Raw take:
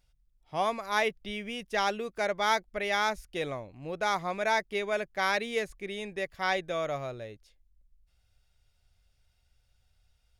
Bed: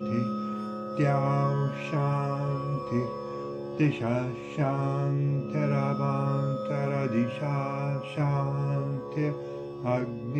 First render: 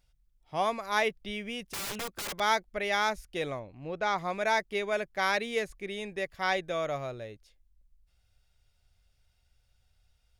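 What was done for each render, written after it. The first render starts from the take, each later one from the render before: 1.63–2.4 wrapped overs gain 31 dB; 3.59–4.18 air absorption 97 m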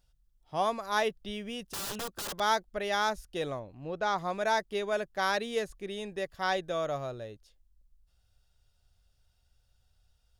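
bell 2200 Hz -10.5 dB 0.35 oct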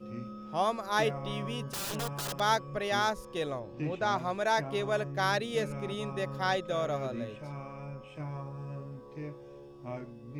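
add bed -12.5 dB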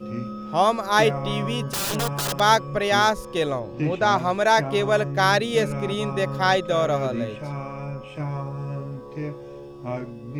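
gain +10 dB

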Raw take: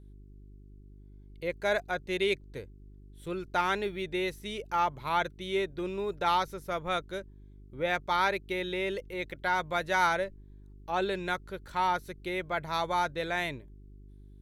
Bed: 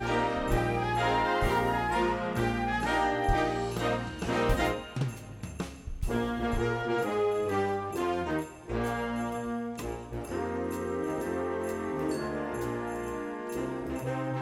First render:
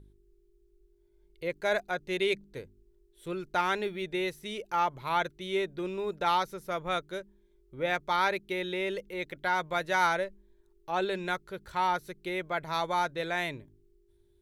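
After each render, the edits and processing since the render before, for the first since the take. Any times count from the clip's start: de-hum 50 Hz, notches 6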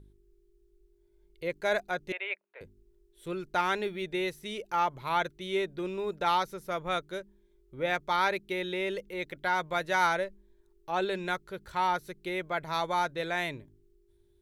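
2.12–2.61 Chebyshev band-pass 600–2600 Hz, order 3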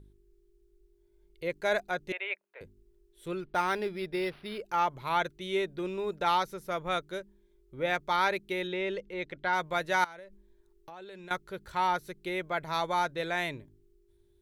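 3.4–4.64 decimation joined by straight lines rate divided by 6×; 8.67–9.53 air absorption 91 m; 10.04–11.31 compressor 10:1, threshold -43 dBFS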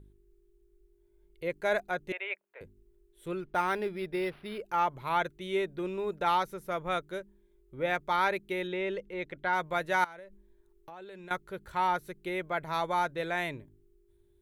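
bell 4900 Hz -6.5 dB 1.1 oct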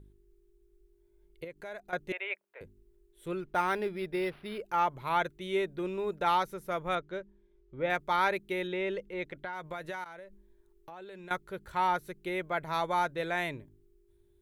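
1.44–1.93 compressor 2.5:1, threshold -46 dBFS; 6.95–7.9 air absorption 130 m; 9.32–10.06 compressor 12:1, threshold -34 dBFS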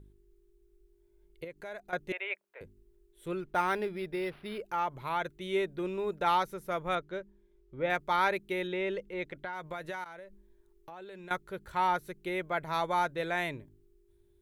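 3.85–5.37 compressor 1.5:1, threshold -33 dBFS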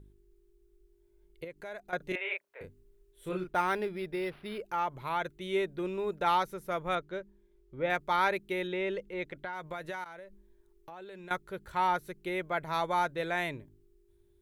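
1.97–3.49 doubler 33 ms -3 dB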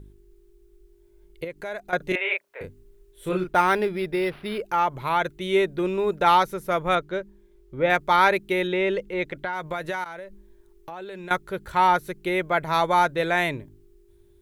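gain +9.5 dB

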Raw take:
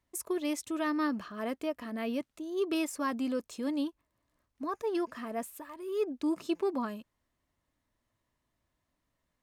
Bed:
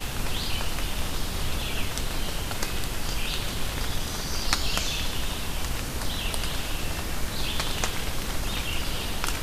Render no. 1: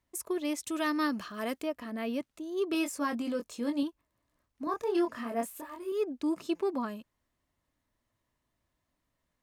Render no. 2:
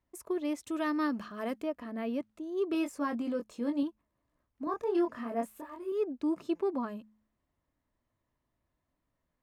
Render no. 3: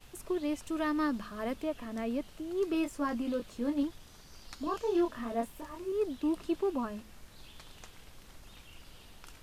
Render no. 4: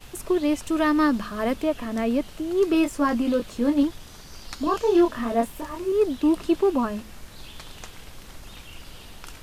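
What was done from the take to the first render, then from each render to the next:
0.66–1.62 high shelf 2600 Hz +9.5 dB; 2.72–3.83 doubler 21 ms -6 dB; 4.64–5.92 doubler 26 ms -2 dB
high shelf 2400 Hz -11 dB; de-hum 107.5 Hz, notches 2
add bed -24 dB
gain +10.5 dB

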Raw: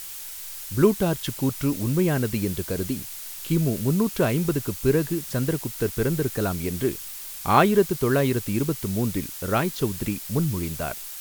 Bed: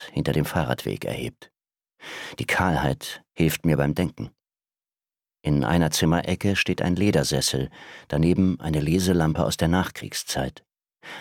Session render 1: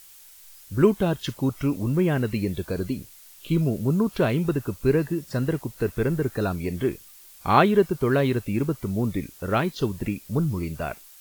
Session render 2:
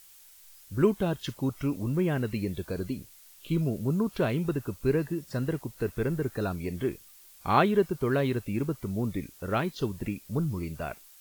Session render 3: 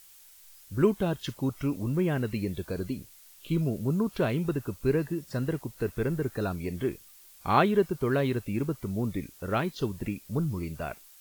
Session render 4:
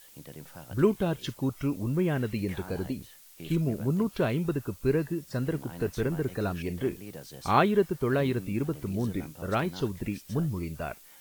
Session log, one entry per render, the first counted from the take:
noise print and reduce 12 dB
gain -5 dB
nothing audible
add bed -23 dB

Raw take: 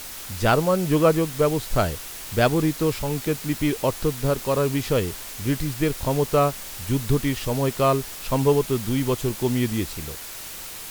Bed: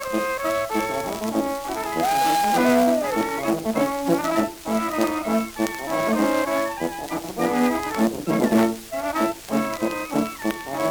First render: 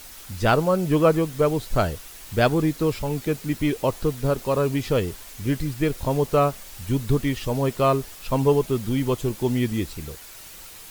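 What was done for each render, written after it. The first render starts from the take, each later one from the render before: denoiser 7 dB, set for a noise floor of -37 dBFS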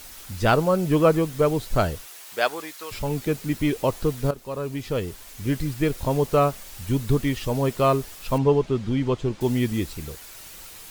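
2.04–2.91 HPF 390 Hz -> 1200 Hz; 4.31–5.63 fade in, from -12.5 dB; 8.38–9.41 air absorption 120 m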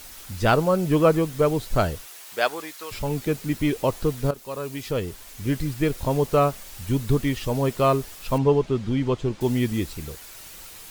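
4.34–4.91 tilt +1.5 dB/oct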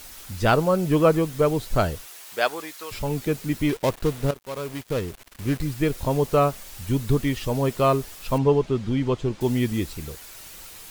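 3.69–5.63 switching dead time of 0.16 ms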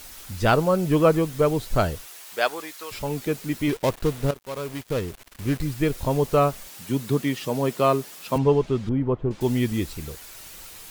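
2.2–3.68 low shelf 120 Hz -8.5 dB; 6.67–8.36 HPF 140 Hz 24 dB/oct; 8.89–9.31 LPF 1200 Hz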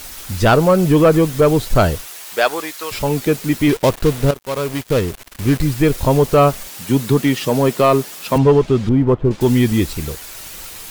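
in parallel at +0.5 dB: limiter -13.5 dBFS, peak gain reduction 8 dB; on the sum: sample leveller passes 1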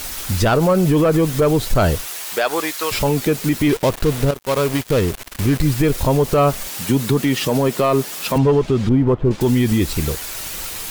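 in parallel at -2.5 dB: compressor, threshold -21 dBFS, peak gain reduction 13 dB; on the sum: limiter -8 dBFS, peak gain reduction 7 dB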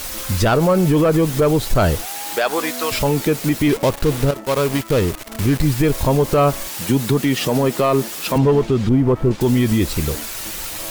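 add bed -15 dB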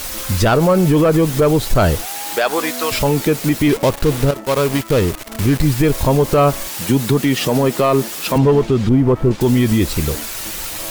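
gain +2 dB

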